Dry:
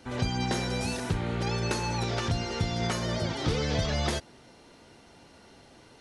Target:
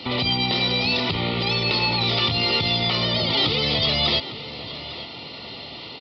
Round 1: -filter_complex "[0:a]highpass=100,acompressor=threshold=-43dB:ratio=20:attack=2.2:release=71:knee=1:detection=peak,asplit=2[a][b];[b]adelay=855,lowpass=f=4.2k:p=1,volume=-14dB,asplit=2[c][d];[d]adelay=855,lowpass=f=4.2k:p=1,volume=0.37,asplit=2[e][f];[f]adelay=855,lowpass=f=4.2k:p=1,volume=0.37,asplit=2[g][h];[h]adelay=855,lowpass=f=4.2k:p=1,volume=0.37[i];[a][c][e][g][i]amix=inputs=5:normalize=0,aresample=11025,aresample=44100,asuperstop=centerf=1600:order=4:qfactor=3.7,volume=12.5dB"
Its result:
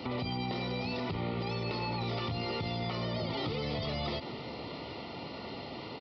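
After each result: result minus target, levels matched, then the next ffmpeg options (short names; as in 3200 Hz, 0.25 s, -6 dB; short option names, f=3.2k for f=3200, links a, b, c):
compressor: peak gain reduction +8.5 dB; 4000 Hz band -4.5 dB
-filter_complex "[0:a]highpass=100,acompressor=threshold=-34dB:ratio=20:attack=2.2:release=71:knee=1:detection=peak,asplit=2[a][b];[b]adelay=855,lowpass=f=4.2k:p=1,volume=-14dB,asplit=2[c][d];[d]adelay=855,lowpass=f=4.2k:p=1,volume=0.37,asplit=2[e][f];[f]adelay=855,lowpass=f=4.2k:p=1,volume=0.37,asplit=2[g][h];[h]adelay=855,lowpass=f=4.2k:p=1,volume=0.37[i];[a][c][e][g][i]amix=inputs=5:normalize=0,aresample=11025,aresample=44100,asuperstop=centerf=1600:order=4:qfactor=3.7,volume=12.5dB"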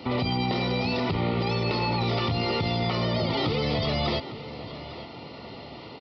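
4000 Hz band -6.0 dB
-filter_complex "[0:a]highpass=100,acompressor=threshold=-34dB:ratio=20:attack=2.2:release=71:knee=1:detection=peak,asplit=2[a][b];[b]adelay=855,lowpass=f=4.2k:p=1,volume=-14dB,asplit=2[c][d];[d]adelay=855,lowpass=f=4.2k:p=1,volume=0.37,asplit=2[e][f];[f]adelay=855,lowpass=f=4.2k:p=1,volume=0.37,asplit=2[g][h];[h]adelay=855,lowpass=f=4.2k:p=1,volume=0.37[i];[a][c][e][g][i]amix=inputs=5:normalize=0,aresample=11025,aresample=44100,asuperstop=centerf=1600:order=4:qfactor=3.7,equalizer=f=3.6k:w=0.94:g=13.5,volume=12.5dB"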